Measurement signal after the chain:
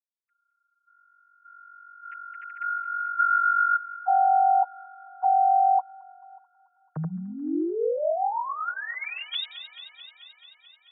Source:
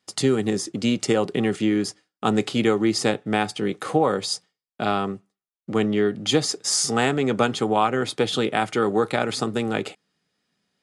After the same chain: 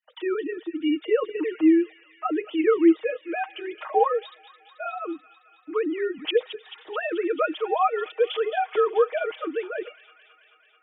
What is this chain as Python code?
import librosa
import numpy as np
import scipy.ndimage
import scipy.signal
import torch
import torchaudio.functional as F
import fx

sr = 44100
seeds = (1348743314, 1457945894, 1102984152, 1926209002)

y = fx.sine_speech(x, sr)
y = y + 0.84 * np.pad(y, (int(6.4 * sr / 1000.0), 0))[:len(y)]
y = fx.echo_wet_highpass(y, sr, ms=218, feedback_pct=74, hz=2700.0, wet_db=-9)
y = y * librosa.db_to_amplitude(-4.5)